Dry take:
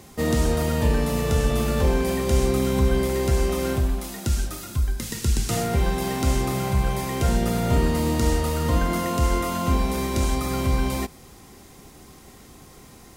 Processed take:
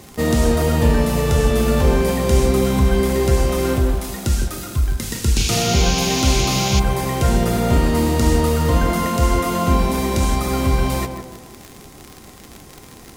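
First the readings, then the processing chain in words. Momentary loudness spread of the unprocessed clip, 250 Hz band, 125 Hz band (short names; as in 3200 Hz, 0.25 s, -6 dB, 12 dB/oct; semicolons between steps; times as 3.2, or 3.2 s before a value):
5 LU, +5.5 dB, +5.0 dB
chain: tape echo 0.157 s, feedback 50%, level -4.5 dB, low-pass 1200 Hz; crackle 67/s -29 dBFS; painted sound noise, 5.36–6.8, 2200–7100 Hz -29 dBFS; gain +4.5 dB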